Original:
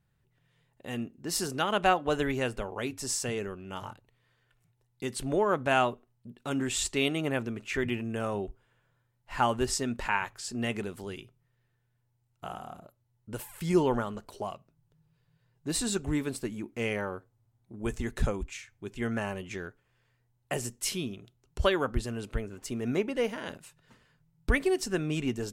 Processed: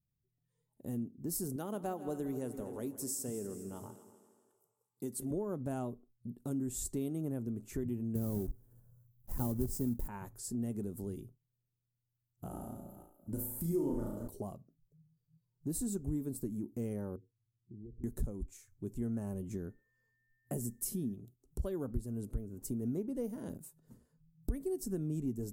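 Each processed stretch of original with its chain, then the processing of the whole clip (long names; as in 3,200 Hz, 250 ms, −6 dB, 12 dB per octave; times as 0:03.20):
0:01.56–0:05.31: high-pass filter 300 Hz 6 dB per octave + echo machine with several playback heads 81 ms, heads second and third, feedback 49%, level −15.5 dB
0:08.15–0:10.08: one scale factor per block 3 bits + low-shelf EQ 380 Hz +9 dB
0:12.49–0:14.28: delay that plays each chunk backwards 270 ms, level −12.5 dB + comb filter 3.3 ms, depth 41% + flutter between parallel walls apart 6.1 metres, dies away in 0.6 s
0:17.16–0:18.04: Chebyshev low-pass with heavy ripple 500 Hz, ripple 6 dB + downward compressor, threshold −49 dBFS
0:19.53–0:21.13: parametric band 220 Hz +7.5 dB 0.23 octaves + steady tone 1,800 Hz −56 dBFS
whole clip: noise reduction from a noise print of the clip's start 16 dB; drawn EQ curve 260 Hz 0 dB, 2,700 Hz −30 dB, 14,000 Hz +6 dB; downward compressor 2.5 to 1, threshold −41 dBFS; level +4 dB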